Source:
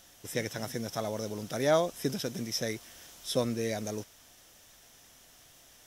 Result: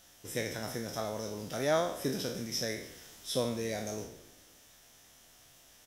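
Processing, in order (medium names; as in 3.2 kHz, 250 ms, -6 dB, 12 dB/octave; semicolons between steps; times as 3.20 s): spectral sustain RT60 0.60 s; frequency-shifting echo 144 ms, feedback 57%, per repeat -39 Hz, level -19.5 dB; trim -4 dB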